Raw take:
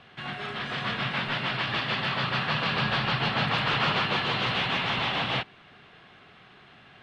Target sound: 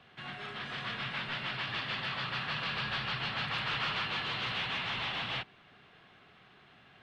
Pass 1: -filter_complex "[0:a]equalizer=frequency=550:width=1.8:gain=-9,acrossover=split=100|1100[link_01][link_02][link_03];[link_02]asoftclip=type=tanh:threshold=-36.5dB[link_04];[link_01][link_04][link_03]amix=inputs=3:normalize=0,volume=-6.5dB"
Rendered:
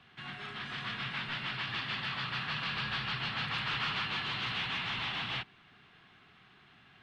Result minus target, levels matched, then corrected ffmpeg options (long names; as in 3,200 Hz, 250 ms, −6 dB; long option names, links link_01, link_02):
500 Hz band −4.5 dB
-filter_complex "[0:a]acrossover=split=100|1100[link_01][link_02][link_03];[link_02]asoftclip=type=tanh:threshold=-36.5dB[link_04];[link_01][link_04][link_03]amix=inputs=3:normalize=0,volume=-6.5dB"